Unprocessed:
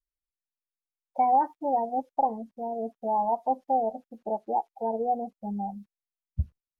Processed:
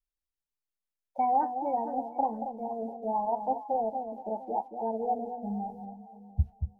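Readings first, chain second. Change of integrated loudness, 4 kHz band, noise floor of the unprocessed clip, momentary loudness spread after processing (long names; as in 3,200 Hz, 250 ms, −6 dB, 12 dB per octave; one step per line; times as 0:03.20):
−3.0 dB, can't be measured, below −85 dBFS, 10 LU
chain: on a send: delay that swaps between a low-pass and a high-pass 231 ms, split 810 Hz, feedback 53%, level −6.5 dB
on the sum: flanger 0.82 Hz, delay 8.7 ms, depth 5.2 ms, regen −66%
low-shelf EQ 170 Hz +6.5 dB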